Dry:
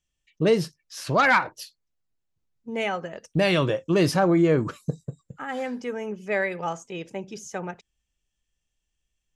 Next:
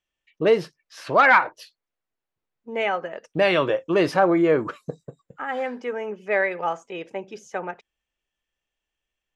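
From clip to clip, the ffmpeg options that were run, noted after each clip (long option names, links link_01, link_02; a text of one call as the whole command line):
ffmpeg -i in.wav -af "bass=frequency=250:gain=-15,treble=frequency=4000:gain=-15,volume=4.5dB" out.wav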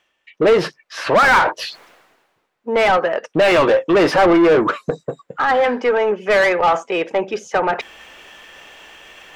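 ffmpeg -i in.wav -filter_complex "[0:a]areverse,acompressor=mode=upward:threshold=-32dB:ratio=2.5,areverse,asplit=2[link_01][link_02];[link_02]highpass=frequency=720:poles=1,volume=27dB,asoftclip=type=tanh:threshold=-4.5dB[link_03];[link_01][link_03]amix=inputs=2:normalize=0,lowpass=frequency=1600:poles=1,volume=-6dB" out.wav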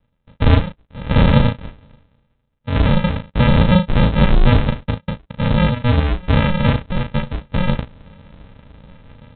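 ffmpeg -i in.wav -filter_complex "[0:a]aresample=8000,acrusher=samples=22:mix=1:aa=0.000001,aresample=44100,asplit=2[link_01][link_02];[link_02]adelay=36,volume=-6dB[link_03];[link_01][link_03]amix=inputs=2:normalize=0" out.wav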